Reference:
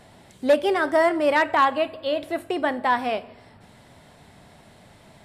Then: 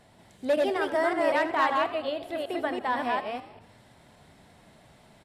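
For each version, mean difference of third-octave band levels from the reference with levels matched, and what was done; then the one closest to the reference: 3.5 dB: chunks repeated in reverse 189 ms, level -1.5 dB; on a send: frequency-shifting echo 83 ms, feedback 48%, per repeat +64 Hz, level -15 dB; on the sum: trim -7.5 dB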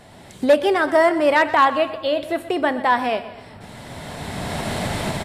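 6.0 dB: recorder AGC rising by 15 dB/s; feedback delay 125 ms, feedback 48%, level -15.5 dB; trim +3.5 dB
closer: first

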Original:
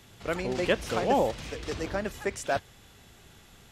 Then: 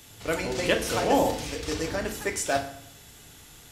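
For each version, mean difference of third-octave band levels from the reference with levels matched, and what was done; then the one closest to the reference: 4.5 dB: treble shelf 4.8 kHz +11.5 dB; FDN reverb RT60 0.68 s, low-frequency decay 1.2×, high-frequency decay 0.75×, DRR 3 dB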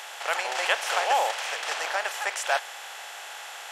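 14.0 dB: spectral levelling over time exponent 0.6; high-pass 750 Hz 24 dB/octave; trim +4.5 dB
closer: first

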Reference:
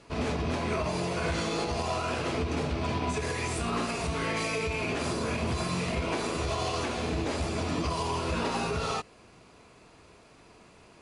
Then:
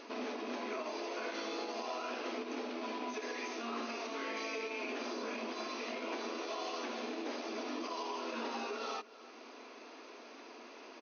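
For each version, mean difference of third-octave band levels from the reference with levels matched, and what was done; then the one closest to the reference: 10.0 dB: FFT band-pass 220–6500 Hz; compression 2:1, threshold -58 dBFS, peak gain reduction 16.5 dB; delay 306 ms -18 dB; trim +7 dB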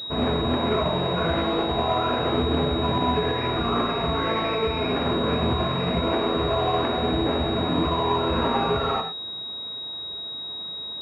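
7.0 dB: bass shelf 90 Hz -8.5 dB; gated-style reverb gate 130 ms flat, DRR 4.5 dB; class-D stage that switches slowly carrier 3.8 kHz; trim +7 dB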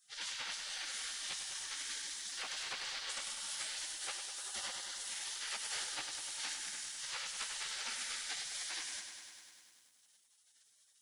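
16.5 dB: spectral gate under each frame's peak -25 dB weak; bass shelf 80 Hz -7.5 dB; bit-crushed delay 100 ms, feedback 80%, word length 12-bit, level -8 dB; trim +3 dB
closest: second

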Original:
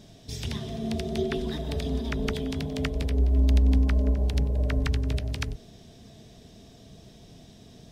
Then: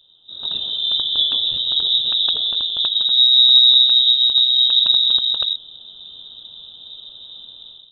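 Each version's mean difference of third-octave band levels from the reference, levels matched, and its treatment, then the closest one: 22.0 dB: treble shelf 2.3 kHz -10 dB; level rider gain up to 15.5 dB; Butterworth band-stop 1.6 kHz, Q 0.97; frequency inversion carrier 3.8 kHz; trim -4.5 dB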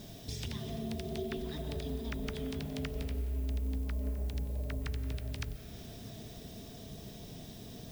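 7.0 dB: compression 3:1, threshold -41 dBFS, peak gain reduction 17.5 dB; added noise violet -61 dBFS; algorithmic reverb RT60 4.1 s, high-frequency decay 0.6×, pre-delay 95 ms, DRR 11.5 dB; trim +2 dB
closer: second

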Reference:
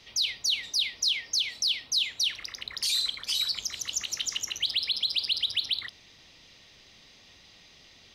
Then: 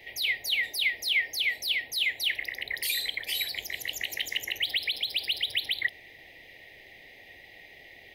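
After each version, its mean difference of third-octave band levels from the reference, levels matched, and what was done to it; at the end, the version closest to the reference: 6.0 dB: FFT filter 140 Hz 0 dB, 200 Hz -5 dB, 360 Hz +7 dB, 790 Hz +9 dB, 1.3 kHz -22 dB, 1.9 kHz +15 dB, 2.7 kHz +3 dB, 5.9 kHz -13 dB, 14 kHz +15 dB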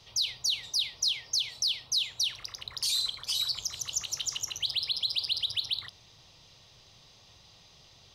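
2.5 dB: graphic EQ 125/250/1000/2000 Hz +8/-9/+4/-10 dB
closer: second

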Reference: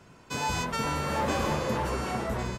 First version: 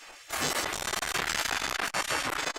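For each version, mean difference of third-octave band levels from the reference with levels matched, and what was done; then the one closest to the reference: 9.5 dB: spectral gate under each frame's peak -15 dB weak; in parallel at +1 dB: compression, threshold -38 dBFS, peak gain reduction 5.5 dB; on the sum: transformer saturation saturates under 2.7 kHz; trim +9 dB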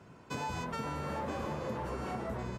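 3.5 dB: high-pass 62 Hz; treble shelf 2.1 kHz -9 dB; compression, threshold -34 dBFS, peak gain reduction 9 dB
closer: second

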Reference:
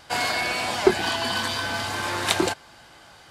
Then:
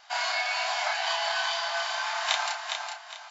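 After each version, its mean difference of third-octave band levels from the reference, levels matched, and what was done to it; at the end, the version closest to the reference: 16.0 dB: brick-wall FIR band-pass 610–7500 Hz; doubling 31 ms -2.5 dB; feedback delay 409 ms, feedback 31%, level -6 dB; trim -5 dB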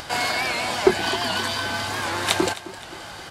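3.0 dB: upward compressor, threshold -28 dBFS; feedback delay 263 ms, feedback 48%, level -16 dB; warped record 78 rpm, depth 100 cents; trim +1 dB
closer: second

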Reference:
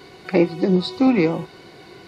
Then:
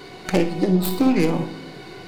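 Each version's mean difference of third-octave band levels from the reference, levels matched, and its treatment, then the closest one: 6.0 dB: tracing distortion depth 0.21 ms; compression 2.5:1, threshold -22 dBFS, peak gain reduction 8 dB; on a send: flutter echo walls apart 9.2 m, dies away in 0.28 s; on the sum: simulated room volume 330 m³, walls mixed, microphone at 0.4 m; trim +3.5 dB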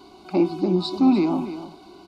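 4.5 dB: treble shelf 3.9 kHz -6.5 dB; transient shaper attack -1 dB, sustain +4 dB; static phaser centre 490 Hz, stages 6; on a send: delay 298 ms -12 dB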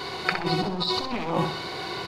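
13.0 dB: one-sided wavefolder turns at -18 dBFS; graphic EQ 250/1000/4000 Hz -4/+8/+7 dB; compressor with a negative ratio -28 dBFS, ratio -1; feedback delay 64 ms, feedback 38%, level -7 dB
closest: second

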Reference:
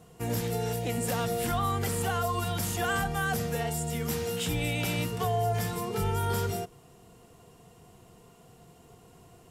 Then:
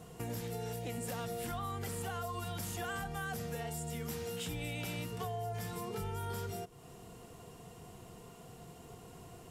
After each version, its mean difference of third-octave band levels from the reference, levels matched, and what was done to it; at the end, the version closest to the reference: 4.5 dB: compression 3:1, threshold -44 dBFS, peak gain reduction 14.5 dB; trim +2.5 dB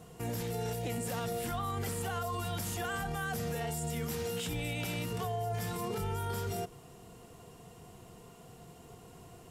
3.5 dB: peak limiter -30 dBFS, peak gain reduction 11 dB; trim +2 dB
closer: second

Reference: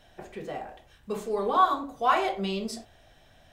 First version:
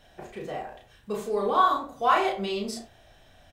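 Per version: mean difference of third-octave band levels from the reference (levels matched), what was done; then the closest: 1.5 dB: doubling 34 ms -3.5 dB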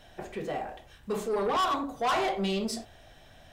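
5.0 dB: saturation -27 dBFS, distortion -6 dB; trim +3.5 dB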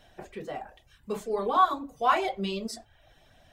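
2.5 dB: reverb removal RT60 0.59 s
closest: first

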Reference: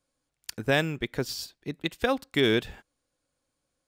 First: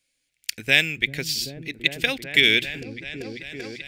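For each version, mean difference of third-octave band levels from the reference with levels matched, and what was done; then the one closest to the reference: 7.5 dB: resonant high shelf 1.6 kHz +11.5 dB, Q 3; hum notches 60/120 Hz; on a send: delay with an opening low-pass 389 ms, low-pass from 200 Hz, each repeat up 1 oct, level -3 dB; on the sum: trim -3.5 dB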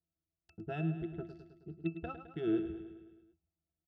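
12.0 dB: local Wiener filter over 25 samples; pitch-class resonator E, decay 0.13 s; on a send: feedback delay 106 ms, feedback 59%, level -10 dB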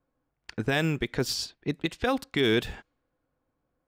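3.5 dB: peak limiter -19.5 dBFS, peak gain reduction 8 dB; level-controlled noise filter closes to 1.3 kHz, open at -29 dBFS; band-stop 560 Hz, Q 14; trim +5 dB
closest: third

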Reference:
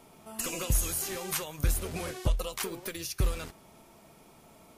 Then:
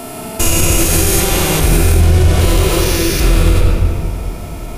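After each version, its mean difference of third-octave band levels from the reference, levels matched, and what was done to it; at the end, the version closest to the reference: 7.0 dB: spectrogram pixelated in time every 400 ms; band-stop 1.1 kHz, Q 12; simulated room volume 3700 m³, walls mixed, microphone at 3.2 m; loudness maximiser +22.5 dB; trim -1 dB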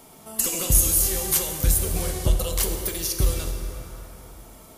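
5.0 dB: treble shelf 6 kHz +9.5 dB; band-stop 2.5 kHz, Q 12; plate-style reverb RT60 3.3 s, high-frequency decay 0.6×, DRR 3.5 dB; dynamic bell 1.4 kHz, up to -5 dB, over -51 dBFS, Q 1.2; trim +4.5 dB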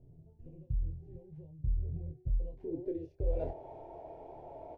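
21.0 dB: reverse; compression 5:1, threshold -40 dBFS, peak gain reduction 16.5 dB; reverse; low-pass sweep 150 Hz -> 860 Hz, 2.17–3.68 s; static phaser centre 500 Hz, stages 4; doubling 25 ms -5.5 dB; trim +7.5 dB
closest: second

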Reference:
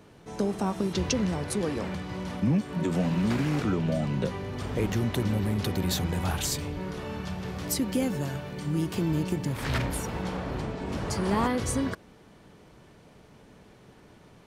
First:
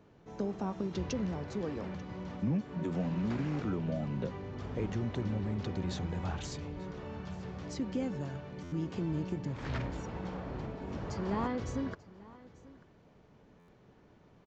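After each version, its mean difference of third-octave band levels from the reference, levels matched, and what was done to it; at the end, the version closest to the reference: 4.0 dB: treble shelf 2.3 kHz -8.5 dB; delay 889 ms -20.5 dB; resampled via 16 kHz; buffer glitch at 8.63/13.59 s, samples 512, times 7; trim -7 dB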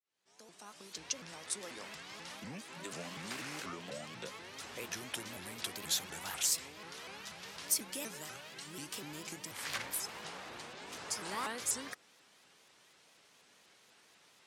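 9.0 dB: fade-in on the opening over 2.10 s; dynamic bell 3.8 kHz, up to -4 dB, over -46 dBFS, Q 0.8; band-pass filter 6.7 kHz, Q 0.55; vibrato with a chosen wave saw up 4.1 Hz, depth 250 cents; trim +2.5 dB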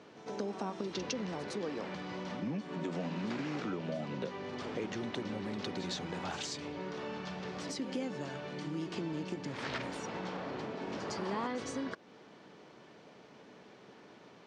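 6.0 dB: high-pass 240 Hz 12 dB/octave; pre-echo 109 ms -13 dB; compression 2:1, threshold -40 dBFS, peak gain reduction 10 dB; low-pass 6.2 kHz 24 dB/octave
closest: first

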